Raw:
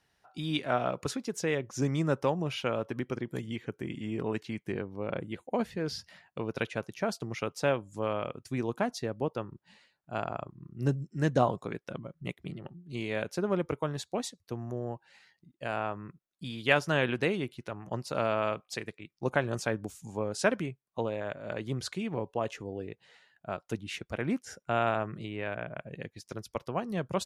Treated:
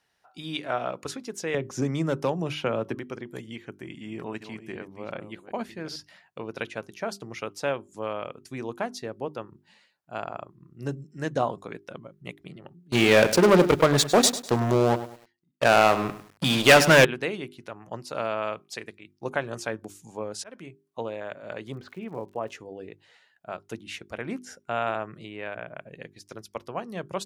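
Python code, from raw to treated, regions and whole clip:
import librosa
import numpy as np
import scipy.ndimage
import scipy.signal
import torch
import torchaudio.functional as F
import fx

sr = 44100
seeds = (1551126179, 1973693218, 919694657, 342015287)

y = fx.chain(x, sr, fx.low_shelf(hz=420.0, db=7.0),
    fx.clip_hard(threshold_db=-14.5),
    fx.band_squash(depth_pct=70), at=(1.54, 2.95))
y = fx.chain(y, sr, fx.reverse_delay(ms=376, wet_db=-10.5),
    fx.peak_eq(hz=470.0, db=-6.5, octaves=0.26), at=(3.64, 5.96))
y = fx.chain(y, sr, fx.leveller(passes=5),
    fx.echo_crushed(ms=101, feedback_pct=35, bits=7, wet_db=-13.0), at=(12.92, 17.05))
y = fx.chain(y, sr, fx.highpass(hz=46.0, slope=12),
    fx.auto_swell(attack_ms=390.0), at=(20.33, 20.84))
y = fx.lowpass(y, sr, hz=1800.0, slope=12, at=(21.72, 22.49), fade=0.02)
y = fx.dmg_crackle(y, sr, seeds[0], per_s=150.0, level_db=-49.0, at=(21.72, 22.49), fade=0.02)
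y = fx.low_shelf(y, sr, hz=190.0, db=-8.5)
y = fx.hum_notches(y, sr, base_hz=50, count=8)
y = y * 10.0 ** (1.0 / 20.0)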